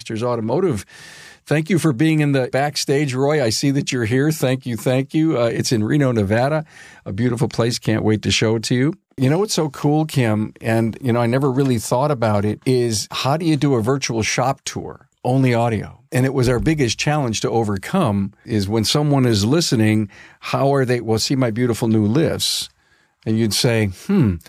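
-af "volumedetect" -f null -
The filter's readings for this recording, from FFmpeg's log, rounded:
mean_volume: -18.4 dB
max_volume: -5.5 dB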